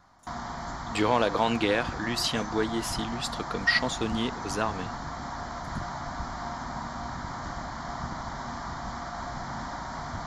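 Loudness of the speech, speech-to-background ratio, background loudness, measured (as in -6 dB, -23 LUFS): -28.0 LUFS, 8.0 dB, -36.0 LUFS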